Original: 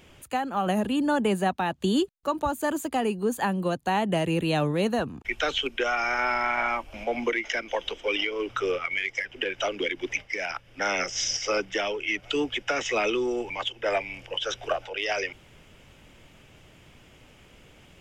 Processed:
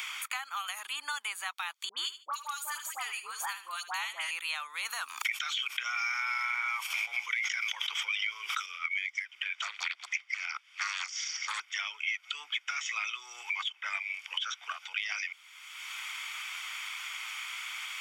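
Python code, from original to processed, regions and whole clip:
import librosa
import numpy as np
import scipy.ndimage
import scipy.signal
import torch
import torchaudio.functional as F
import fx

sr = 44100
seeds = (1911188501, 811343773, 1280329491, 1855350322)

y = fx.chain(x, sr, fx.dispersion(late='highs', ms=85.0, hz=1300.0),
    fx.echo_feedback(ms=74, feedback_pct=20, wet_db=-13.5), at=(1.89, 4.31))
y = fx.chain(y, sr, fx.high_shelf(hz=6200.0, db=9.0),
    fx.env_flatten(amount_pct=100), at=(4.85, 8.66))
y = fx.chain(y, sr, fx.lowpass(hz=9800.0, slope=12),
    fx.doppler_dist(depth_ms=0.74), at=(9.55, 11.6))
y = scipy.signal.sosfilt(scipy.signal.butter(4, 1300.0, 'highpass', fs=sr, output='sos'), y)
y = y + 0.51 * np.pad(y, (int(0.9 * sr / 1000.0), 0))[:len(y)]
y = fx.band_squash(y, sr, depth_pct=100)
y = F.gain(torch.from_numpy(y), -7.0).numpy()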